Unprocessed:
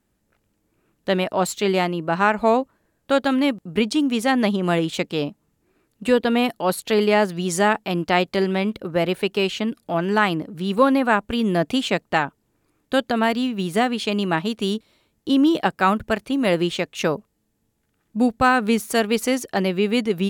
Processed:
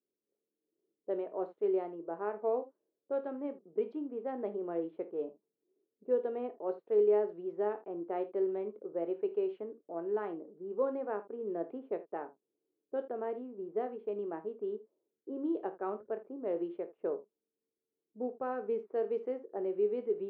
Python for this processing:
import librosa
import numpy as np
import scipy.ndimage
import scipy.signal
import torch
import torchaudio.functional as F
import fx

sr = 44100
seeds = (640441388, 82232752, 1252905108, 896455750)

y = fx.ladder_bandpass(x, sr, hz=460.0, resonance_pct=60)
y = fx.room_early_taps(y, sr, ms=(24, 53, 79), db=(-11.0, -15.0, -17.0))
y = fx.env_lowpass(y, sr, base_hz=460.0, full_db=-21.5)
y = y * 10.0 ** (-6.0 / 20.0)